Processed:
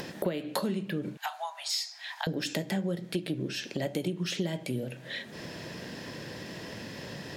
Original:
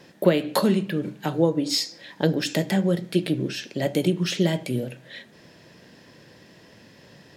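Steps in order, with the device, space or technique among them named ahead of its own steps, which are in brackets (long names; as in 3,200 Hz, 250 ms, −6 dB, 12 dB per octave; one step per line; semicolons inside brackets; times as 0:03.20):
0:01.17–0:02.27: Butterworth high-pass 680 Hz 96 dB per octave
upward and downward compression (upward compression, threshold −24 dBFS; downward compressor 4 to 1, threshold −24 dBFS, peak gain reduction 11 dB)
level −4 dB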